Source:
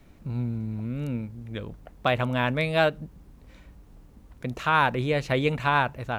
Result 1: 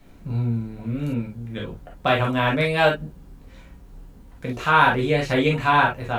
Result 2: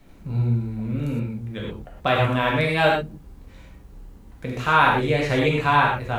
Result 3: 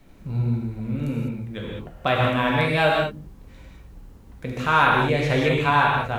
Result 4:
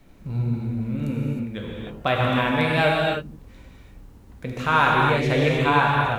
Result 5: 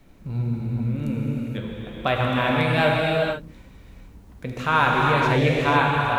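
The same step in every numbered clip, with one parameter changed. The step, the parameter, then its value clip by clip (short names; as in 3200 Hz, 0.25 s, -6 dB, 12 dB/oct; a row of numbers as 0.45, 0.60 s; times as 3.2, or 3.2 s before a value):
non-linear reverb, gate: 80, 140, 230, 340, 520 ms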